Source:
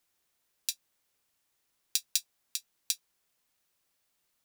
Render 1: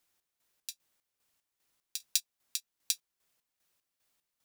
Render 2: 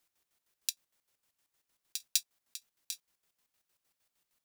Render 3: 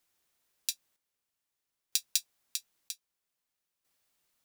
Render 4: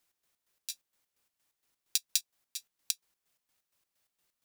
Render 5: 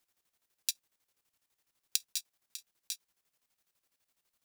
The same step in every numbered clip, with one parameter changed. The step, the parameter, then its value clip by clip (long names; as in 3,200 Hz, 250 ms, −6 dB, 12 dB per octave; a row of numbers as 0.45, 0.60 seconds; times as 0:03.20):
square-wave tremolo, speed: 2.5, 6.5, 0.52, 4.3, 12 Hertz